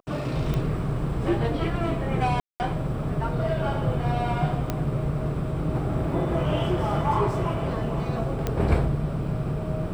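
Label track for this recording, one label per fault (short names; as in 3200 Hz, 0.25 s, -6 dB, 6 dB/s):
0.540000	0.540000	pop -16 dBFS
2.400000	2.600000	gap 0.199 s
4.700000	4.700000	pop -12 dBFS
8.470000	8.470000	pop -12 dBFS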